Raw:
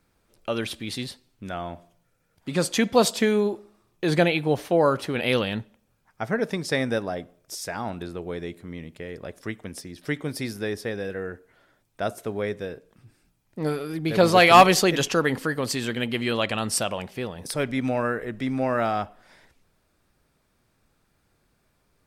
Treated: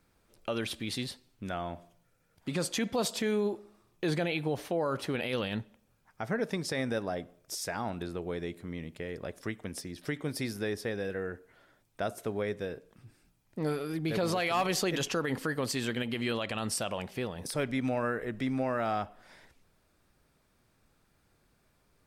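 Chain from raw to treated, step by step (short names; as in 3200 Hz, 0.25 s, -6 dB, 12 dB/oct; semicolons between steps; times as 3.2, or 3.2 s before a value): in parallel at -1 dB: compressor, threshold -33 dBFS, peak gain reduction 22.5 dB; on the sum: limiter -14.5 dBFS, peak gain reduction 11 dB; gain -7 dB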